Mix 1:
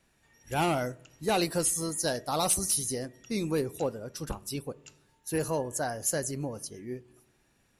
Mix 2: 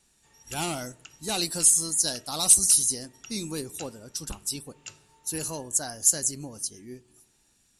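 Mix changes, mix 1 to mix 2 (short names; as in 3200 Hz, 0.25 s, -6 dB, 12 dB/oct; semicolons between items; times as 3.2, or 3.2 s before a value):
speech: add graphic EQ 125/500/1000/2000/4000/8000 Hz -5/-8/-3/-5/+4/+12 dB; background +10.0 dB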